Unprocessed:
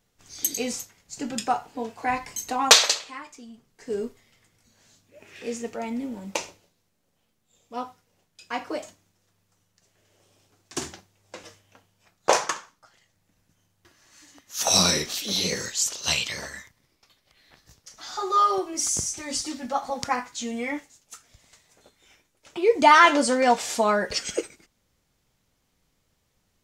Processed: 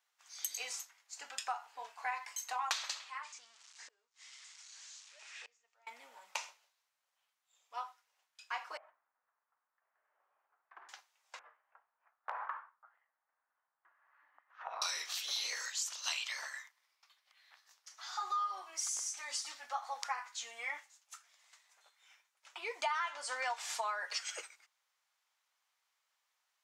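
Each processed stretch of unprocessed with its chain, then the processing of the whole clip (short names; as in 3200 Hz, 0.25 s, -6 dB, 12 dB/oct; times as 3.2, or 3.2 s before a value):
3.23–5.87 switching spikes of -34 dBFS + steep low-pass 7500 Hz + flipped gate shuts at -29 dBFS, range -28 dB
8.77–10.89 LPF 1600 Hz 24 dB/oct + compressor 3:1, threshold -41 dBFS
11.39–14.82 LPF 1600 Hz 24 dB/oct + hard clip -9.5 dBFS + compressor 10:1, threshold -27 dBFS
whole clip: HPF 930 Hz 24 dB/oct; tilt -2 dB/oct; compressor 8:1, threshold -30 dBFS; gain -3.5 dB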